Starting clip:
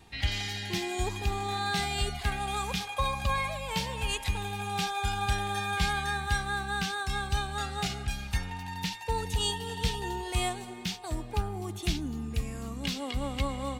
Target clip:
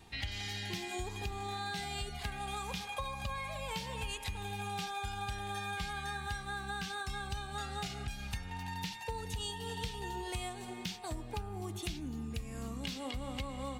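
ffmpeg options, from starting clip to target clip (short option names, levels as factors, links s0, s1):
-af "bandreject=f=71.07:t=h:w=4,bandreject=f=142.14:t=h:w=4,bandreject=f=213.21:t=h:w=4,bandreject=f=284.28:t=h:w=4,bandreject=f=355.35:t=h:w=4,bandreject=f=426.42:t=h:w=4,bandreject=f=497.49:t=h:w=4,bandreject=f=568.56:t=h:w=4,bandreject=f=639.63:t=h:w=4,bandreject=f=710.7:t=h:w=4,bandreject=f=781.77:t=h:w=4,bandreject=f=852.84:t=h:w=4,bandreject=f=923.91:t=h:w=4,bandreject=f=994.98:t=h:w=4,bandreject=f=1066.05:t=h:w=4,bandreject=f=1137.12:t=h:w=4,bandreject=f=1208.19:t=h:w=4,bandreject=f=1279.26:t=h:w=4,bandreject=f=1350.33:t=h:w=4,bandreject=f=1421.4:t=h:w=4,bandreject=f=1492.47:t=h:w=4,bandreject=f=1563.54:t=h:w=4,bandreject=f=1634.61:t=h:w=4,bandreject=f=1705.68:t=h:w=4,bandreject=f=1776.75:t=h:w=4,bandreject=f=1847.82:t=h:w=4,bandreject=f=1918.89:t=h:w=4,bandreject=f=1989.96:t=h:w=4,bandreject=f=2061.03:t=h:w=4,bandreject=f=2132.1:t=h:w=4,bandreject=f=2203.17:t=h:w=4,bandreject=f=2274.24:t=h:w=4,bandreject=f=2345.31:t=h:w=4,bandreject=f=2416.38:t=h:w=4,bandreject=f=2487.45:t=h:w=4,bandreject=f=2558.52:t=h:w=4,bandreject=f=2629.59:t=h:w=4,bandreject=f=2700.66:t=h:w=4,acompressor=threshold=0.0178:ratio=6,volume=0.891"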